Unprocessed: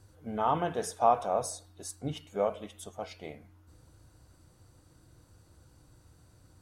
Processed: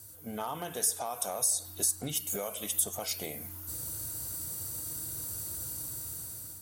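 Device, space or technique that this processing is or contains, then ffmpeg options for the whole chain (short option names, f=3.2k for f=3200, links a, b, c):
FM broadcast chain: -filter_complex "[0:a]highpass=69,dynaudnorm=f=410:g=5:m=12dB,acrossover=split=1500|5400[a][b][c];[a]acompressor=threshold=-35dB:ratio=4[d];[b]acompressor=threshold=-48dB:ratio=4[e];[c]acompressor=threshold=-46dB:ratio=4[f];[d][e][f]amix=inputs=3:normalize=0,aemphasis=mode=production:type=50fm,alimiter=level_in=1dB:limit=-24dB:level=0:latency=1:release=163,volume=-1dB,asoftclip=type=hard:threshold=-27dB,lowpass=f=15k:w=0.5412,lowpass=f=15k:w=1.3066,aemphasis=mode=production:type=50fm"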